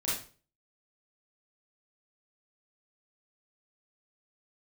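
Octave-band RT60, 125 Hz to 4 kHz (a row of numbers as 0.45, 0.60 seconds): 0.50, 0.40, 0.40, 0.40, 0.35, 0.35 seconds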